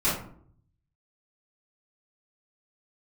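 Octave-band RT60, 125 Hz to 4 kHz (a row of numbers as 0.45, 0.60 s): 1.2, 0.75, 0.65, 0.55, 0.40, 0.30 s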